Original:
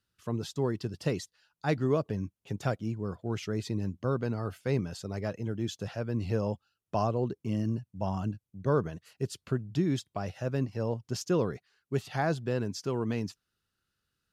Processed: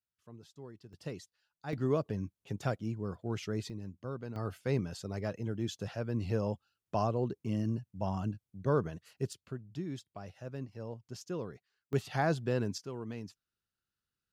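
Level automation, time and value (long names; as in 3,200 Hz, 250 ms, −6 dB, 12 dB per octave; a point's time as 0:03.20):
−19 dB
from 0:00.93 −11 dB
from 0:01.73 −3 dB
from 0:03.70 −10.5 dB
from 0:04.36 −2.5 dB
from 0:09.33 −11 dB
from 0:11.93 −1 dB
from 0:12.78 −10 dB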